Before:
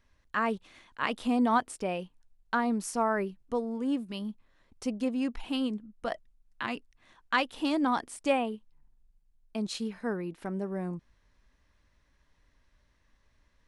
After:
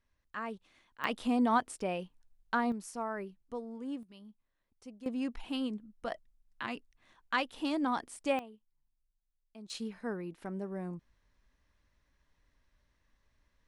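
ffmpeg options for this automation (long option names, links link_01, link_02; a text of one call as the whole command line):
ffmpeg -i in.wav -af "asetnsamples=nb_out_samples=441:pad=0,asendcmd='1.04 volume volume -2.5dB;2.72 volume volume -9.5dB;4.03 volume volume -17dB;5.06 volume volume -4.5dB;8.39 volume volume -17dB;9.7 volume volume -5dB',volume=-10.5dB" out.wav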